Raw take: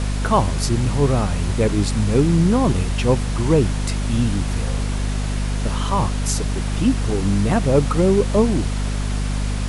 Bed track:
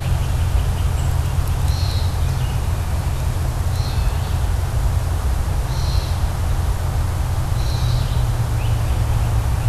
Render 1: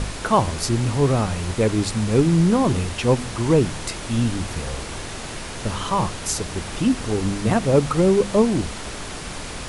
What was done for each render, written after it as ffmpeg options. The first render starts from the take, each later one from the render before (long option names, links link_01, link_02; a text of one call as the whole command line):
ffmpeg -i in.wav -af "bandreject=frequency=50:width_type=h:width=4,bandreject=frequency=100:width_type=h:width=4,bandreject=frequency=150:width_type=h:width=4,bandreject=frequency=200:width_type=h:width=4,bandreject=frequency=250:width_type=h:width=4" out.wav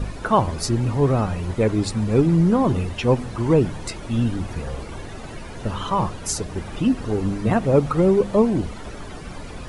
ffmpeg -i in.wav -af "afftdn=noise_reduction=13:noise_floor=-33" out.wav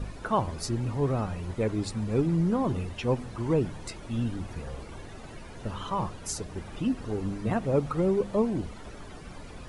ffmpeg -i in.wav -af "volume=-8.5dB" out.wav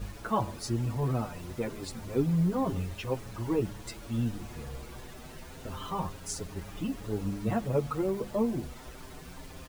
ffmpeg -i in.wav -filter_complex "[0:a]acrusher=bits=7:mix=0:aa=0.000001,asplit=2[link_01][link_02];[link_02]adelay=6.8,afreqshift=0.28[link_03];[link_01][link_03]amix=inputs=2:normalize=1" out.wav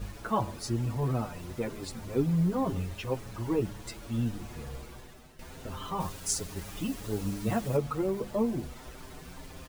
ffmpeg -i in.wav -filter_complex "[0:a]asettb=1/sr,asplit=3[link_01][link_02][link_03];[link_01]atrim=end=6.004[link_04];[link_02]atrim=start=6:end=7.77,asetpts=PTS-STARTPTS,afade=type=in:duration=0.004:curve=qsin,afade=type=out:start_time=1.766:duration=0.004:curve=qsin,highshelf=frequency=3300:gain=8.5[link_05];[link_03]atrim=start=7.766[link_06];[link_04][link_05]acrossfade=duration=0.004:curve1=hsin:curve2=qsin[link_07];[link_07][link_06]acrossfade=duration=0.004:curve1=qsin:curve2=hsin,asplit=2[link_08][link_09];[link_08]atrim=end=5.39,asetpts=PTS-STARTPTS,afade=type=out:start_time=4.75:duration=0.64:silence=0.237137[link_10];[link_09]atrim=start=5.39,asetpts=PTS-STARTPTS,afade=type=in:duration=0.004:curve=hsin:silence=0.237137[link_11];[link_10][link_11]concat=n=2:v=0:a=1" out.wav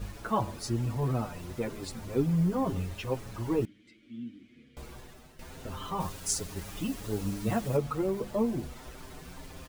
ffmpeg -i in.wav -filter_complex "[0:a]asettb=1/sr,asplit=3[link_01][link_02][link_03];[link_01]atrim=end=2.254[link_04];[link_02]atrim=start=2.25:end=2.67,asetpts=PTS-STARTPTS,afade=type=in:duration=0.004:curve=qsin,afade=type=out:start_time=0.416:duration=0.004:curve=qsin,bandreject=frequency=3900:width=12[link_05];[link_03]atrim=start=2.666[link_06];[link_04][link_05]acrossfade=duration=0.004:curve1=hsin:curve2=qsin[link_07];[link_07][link_06]acrossfade=duration=0.004:curve1=qsin:curve2=hsin,asettb=1/sr,asplit=3[link_08][link_09][link_10];[link_08]atrim=end=3.654[link_11];[link_09]atrim=start=3.65:end=4.77,asetpts=PTS-STARTPTS,afade=type=in:duration=0.004:curve=qsin,afade=type=out:start_time=1.116:duration=0.004:curve=qsin,asplit=3[link_12][link_13][link_14];[link_12]bandpass=frequency=270:width_type=q:width=8,volume=0dB[link_15];[link_13]bandpass=frequency=2290:width_type=q:width=8,volume=-6dB[link_16];[link_14]bandpass=frequency=3010:width_type=q:width=8,volume=-9dB[link_17];[link_15][link_16][link_17]amix=inputs=3:normalize=0[link_18];[link_10]atrim=start=4.766[link_19];[link_11][link_18]acrossfade=duration=0.004:curve1=hsin:curve2=qsin[link_20];[link_20][link_19]acrossfade=duration=0.004:curve1=qsin:curve2=hsin" out.wav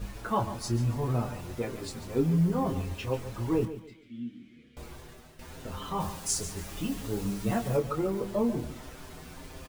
ffmpeg -i in.wav -filter_complex "[0:a]asplit=2[link_01][link_02];[link_02]adelay=25,volume=-7dB[link_03];[link_01][link_03]amix=inputs=2:normalize=0,aecho=1:1:142|284|426:0.237|0.0688|0.0199" out.wav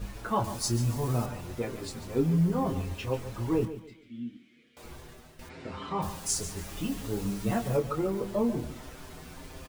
ffmpeg -i in.wav -filter_complex "[0:a]asettb=1/sr,asplit=3[link_01][link_02][link_03];[link_01]atrim=end=0.444[link_04];[link_02]atrim=start=0.44:end=1.26,asetpts=PTS-STARTPTS,afade=type=in:duration=0.004:curve=qsin,afade=type=out:start_time=0.816:duration=0.004:curve=qsin,bass=frequency=250:gain=0,treble=frequency=4000:gain=9[link_05];[link_03]atrim=start=1.256[link_06];[link_04][link_05]acrossfade=duration=0.004:curve1=hsin:curve2=qsin[link_07];[link_07][link_06]acrossfade=duration=0.004:curve1=qsin:curve2=hsin,asettb=1/sr,asplit=3[link_08][link_09][link_10];[link_08]atrim=end=4.374[link_11];[link_09]atrim=start=4.37:end=4.84,asetpts=PTS-STARTPTS,afade=type=in:duration=0.004:curve=qsin,afade=type=out:start_time=0.466:duration=0.004:curve=qsin,highpass=frequency=580:poles=1[link_12];[link_10]atrim=start=4.836[link_13];[link_11][link_12]acrossfade=duration=0.004:curve1=hsin:curve2=qsin[link_14];[link_14][link_13]acrossfade=duration=0.004:curve1=qsin:curve2=hsin,asplit=3[link_15][link_16][link_17];[link_15]afade=type=out:start_time=5.48:duration=0.02[link_18];[link_16]highpass=100,equalizer=frequency=330:width_type=q:width=4:gain=7,equalizer=frequency=2200:width_type=q:width=4:gain=8,equalizer=frequency=3200:width_type=q:width=4:gain=-4,equalizer=frequency=6300:width_type=q:width=4:gain=-9,lowpass=frequency=6600:width=0.5412,lowpass=frequency=6600:width=1.3066,afade=type=in:start_time=5.48:duration=0.02,afade=type=out:start_time=6.01:duration=0.02[link_19];[link_17]afade=type=in:start_time=6.01:duration=0.02[link_20];[link_18][link_19][link_20]amix=inputs=3:normalize=0" out.wav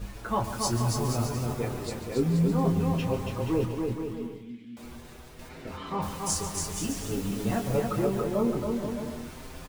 ffmpeg -i in.wav -af "aecho=1:1:280|476|613.2|709.2|776.5:0.631|0.398|0.251|0.158|0.1" out.wav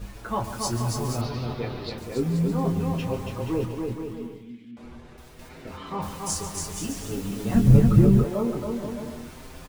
ffmpeg -i in.wav -filter_complex "[0:a]asettb=1/sr,asplit=3[link_01][link_02][link_03];[link_01]atrim=end=1.214[link_04];[link_02]atrim=start=1.21:end=1.98,asetpts=PTS-STARTPTS,afade=type=in:duration=0.004:curve=qsin,afade=type=out:start_time=0.766:duration=0.004:curve=qsin,highshelf=frequency=5700:width_type=q:width=3:gain=-12[link_05];[link_03]atrim=start=1.976[link_06];[link_04][link_05]acrossfade=duration=0.004:curve1=hsin:curve2=qsin[link_07];[link_07][link_06]acrossfade=duration=0.004:curve1=qsin:curve2=hsin,asettb=1/sr,asplit=3[link_08][link_09][link_10];[link_08]atrim=end=4.714[link_11];[link_09]atrim=start=4.71:end=5.18,asetpts=PTS-STARTPTS,afade=type=in:duration=0.004:curve=qsin,afade=type=out:start_time=0.466:duration=0.004:curve=qsin,aemphasis=mode=reproduction:type=75fm[link_12];[link_10]atrim=start=5.176[link_13];[link_11][link_12]acrossfade=duration=0.004:curve1=hsin:curve2=qsin[link_14];[link_14][link_13]acrossfade=duration=0.004:curve1=qsin:curve2=hsin,asplit=3[link_15][link_16][link_17];[link_15]afade=type=out:start_time=7.54:duration=0.02[link_18];[link_16]asubboost=boost=11:cutoff=200,afade=type=in:start_time=7.54:duration=0.02,afade=type=out:start_time=8.23:duration=0.02[link_19];[link_17]afade=type=in:start_time=8.23:duration=0.02[link_20];[link_18][link_19][link_20]amix=inputs=3:normalize=0" out.wav